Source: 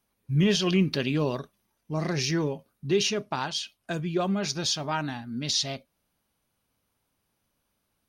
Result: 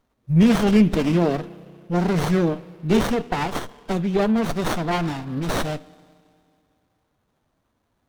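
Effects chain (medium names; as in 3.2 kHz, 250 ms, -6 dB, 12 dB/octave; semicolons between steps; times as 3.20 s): spring tank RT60 2.4 s, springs 32/55 ms, chirp 60 ms, DRR 19 dB; formant-preserving pitch shift +2 st; sliding maximum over 17 samples; trim +8 dB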